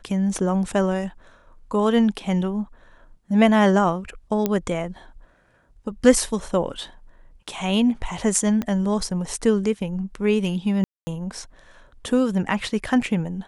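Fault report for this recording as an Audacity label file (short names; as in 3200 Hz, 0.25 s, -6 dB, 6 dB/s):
4.460000	4.460000	pop -8 dBFS
8.620000	8.620000	pop -14 dBFS
10.840000	11.070000	gap 0.23 s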